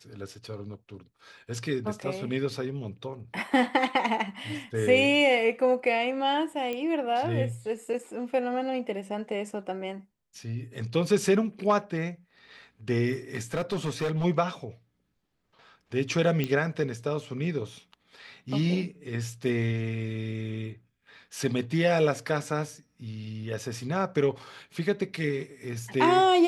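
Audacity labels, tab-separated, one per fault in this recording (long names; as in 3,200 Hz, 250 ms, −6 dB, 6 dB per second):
6.730000	6.730000	click −20 dBFS
13.350000	14.250000	clipping −24 dBFS
16.440000	16.440000	click −15 dBFS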